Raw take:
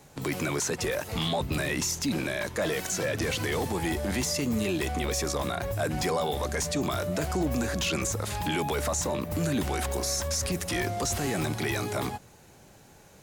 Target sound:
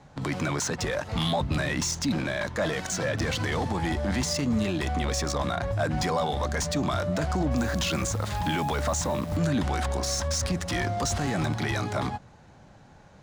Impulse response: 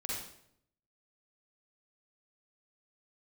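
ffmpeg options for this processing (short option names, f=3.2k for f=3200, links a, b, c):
-filter_complex "[0:a]equalizer=f=400:t=o:w=0.67:g=-8,equalizer=f=2.5k:t=o:w=0.67:g=-5,equalizer=f=16k:t=o:w=0.67:g=-7,adynamicsmooth=sensitivity=6.5:basefreq=3.7k,asettb=1/sr,asplit=3[a][b][c];[a]atrim=end=7.574[d];[b]atrim=start=7.57:end=9.37,asetpts=PTS-STARTPTS,afade=t=in:d=0.004:c=qsin,afade=t=out:st=1.796:d=0.004:c=qsin,acrusher=bits=9:dc=4:mix=0:aa=0.000001[e];[c]atrim=start=9.366[f];[d][e]acrossfade=d=0.004:c1=hsin:c2=qsin[g];[g][f]acrossfade=d=0.004:c1=qsin:c2=hsin,volume=4dB"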